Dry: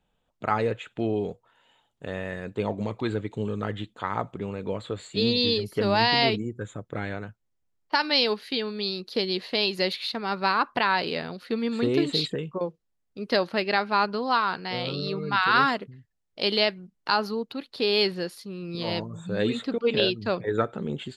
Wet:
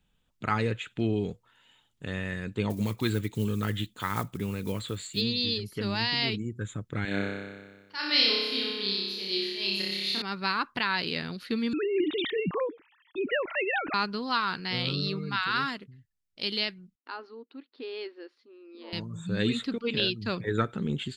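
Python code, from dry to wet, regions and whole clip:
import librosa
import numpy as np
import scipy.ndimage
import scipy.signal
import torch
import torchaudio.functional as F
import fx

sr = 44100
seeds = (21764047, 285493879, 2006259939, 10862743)

y = fx.chain(x, sr, fx.block_float(bits=7),
    fx.high_shelf(hz=6900.0, db=10.5), at=(2.7, 5.22))
y = fx.chain(y, sr, fx.auto_swell(attack_ms=147.0),
    fx.highpass(hz=240.0, slope=12),
    fx.room_flutter(wall_m=5.2, rt60_s=1.4), at=(7.05, 10.22))
y = fx.chain(y, sr, fx.sine_speech(),
    fx.env_flatten(amount_pct=50), at=(11.73, 13.94))
y = fx.chain(y, sr, fx.brickwall_highpass(low_hz=240.0),
    fx.spacing_loss(db_at_10k=41), at=(16.95, 18.93))
y = fx.peak_eq(y, sr, hz=650.0, db=-13.0, octaves=1.6)
y = fx.rider(y, sr, range_db=4, speed_s=0.5)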